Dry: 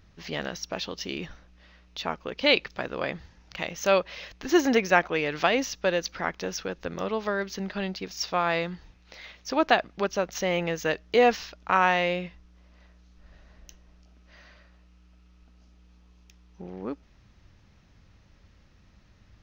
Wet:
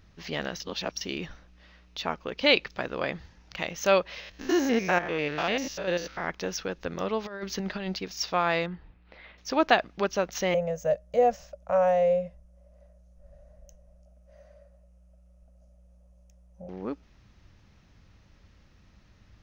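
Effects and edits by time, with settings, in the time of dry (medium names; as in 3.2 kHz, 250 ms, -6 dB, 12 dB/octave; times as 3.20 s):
0.60–1.01 s: reverse
4.20–6.30 s: spectrogram pixelated in time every 100 ms
7.24–7.99 s: compressor with a negative ratio -32 dBFS, ratio -0.5
8.66–9.38 s: distance through air 420 m
10.54–16.69 s: FFT filter 150 Hz 0 dB, 250 Hz -9 dB, 380 Hz -29 dB, 560 Hz +13 dB, 880 Hz -11 dB, 4.2 kHz -21 dB, 9.8 kHz +9 dB, 14 kHz -8 dB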